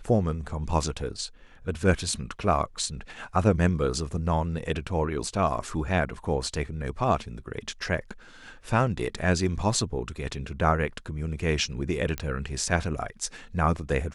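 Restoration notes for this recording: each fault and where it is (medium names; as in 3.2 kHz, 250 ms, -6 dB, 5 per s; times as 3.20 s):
12.18 s: pop -14 dBFS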